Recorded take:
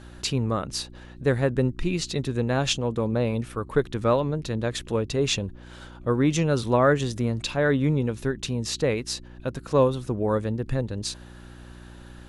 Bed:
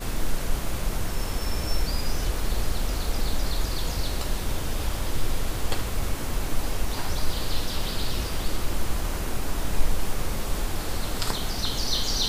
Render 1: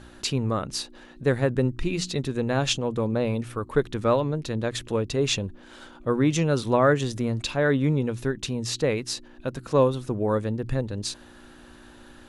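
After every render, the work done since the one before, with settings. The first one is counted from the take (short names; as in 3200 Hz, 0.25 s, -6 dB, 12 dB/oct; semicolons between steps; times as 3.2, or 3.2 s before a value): de-hum 60 Hz, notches 3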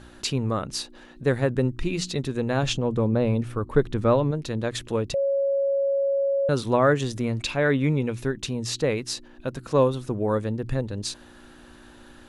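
2.63–4.31 tilt -1.5 dB/oct; 5.14–6.49 bleep 553 Hz -20 dBFS; 7.23–8.22 bell 2300 Hz +7 dB 0.42 oct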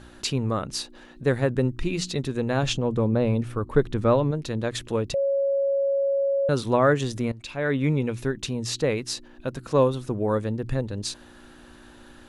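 7.32–7.89 fade in, from -18 dB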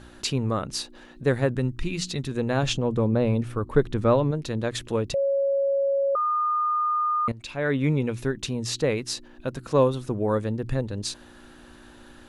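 1.52–2.31 dynamic EQ 520 Hz, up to -7 dB, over -38 dBFS, Q 0.77; 6.15–7.28 bleep 1220 Hz -21 dBFS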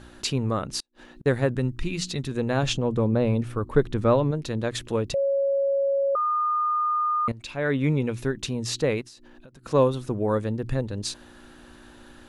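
0.8–1.26 flipped gate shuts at -31 dBFS, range -37 dB; 9.01–9.66 compressor 16:1, threshold -44 dBFS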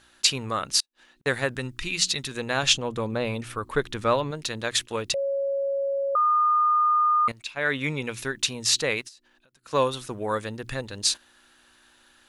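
gate -36 dBFS, range -11 dB; tilt shelf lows -9.5 dB, about 810 Hz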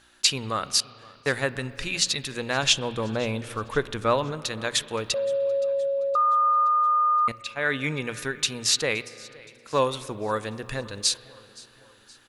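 feedback echo 0.52 s, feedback 53%, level -23 dB; spring tank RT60 2.9 s, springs 32/36 ms, chirp 30 ms, DRR 16 dB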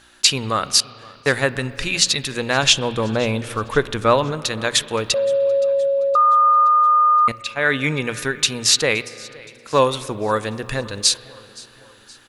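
gain +7 dB; limiter -1 dBFS, peak gain reduction 1.5 dB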